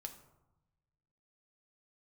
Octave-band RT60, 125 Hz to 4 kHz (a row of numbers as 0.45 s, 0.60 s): 1.7 s, 1.3 s, 0.95 s, 1.0 s, 0.65 s, 0.45 s